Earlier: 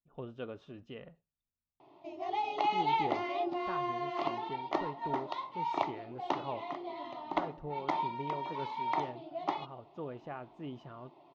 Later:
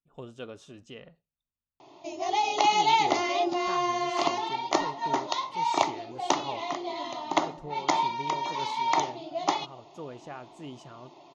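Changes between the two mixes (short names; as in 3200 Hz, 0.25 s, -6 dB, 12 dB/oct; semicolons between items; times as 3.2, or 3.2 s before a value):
background +6.0 dB; master: remove air absorption 330 m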